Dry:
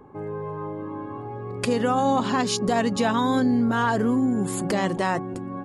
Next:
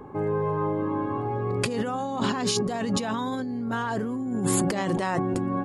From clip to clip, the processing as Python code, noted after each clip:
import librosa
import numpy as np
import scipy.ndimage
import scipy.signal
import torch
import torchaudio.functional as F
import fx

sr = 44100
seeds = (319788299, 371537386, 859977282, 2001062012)

y = fx.over_compress(x, sr, threshold_db=-28.0, ratio=-1.0)
y = y * 10.0 ** (1.5 / 20.0)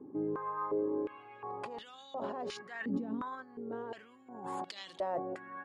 y = fx.filter_held_bandpass(x, sr, hz=2.8, low_hz=290.0, high_hz=3700.0)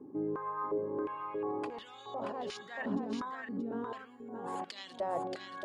y = x + 10.0 ** (-4.5 / 20.0) * np.pad(x, (int(629 * sr / 1000.0), 0))[:len(x)]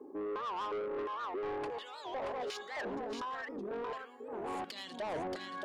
y = fx.filter_sweep_highpass(x, sr, from_hz=460.0, to_hz=180.0, start_s=4.28, end_s=4.79, q=1.4)
y = 10.0 ** (-37.5 / 20.0) * np.tanh(y / 10.0 ** (-37.5 / 20.0))
y = fx.record_warp(y, sr, rpm=78.0, depth_cents=250.0)
y = y * 10.0 ** (3.0 / 20.0)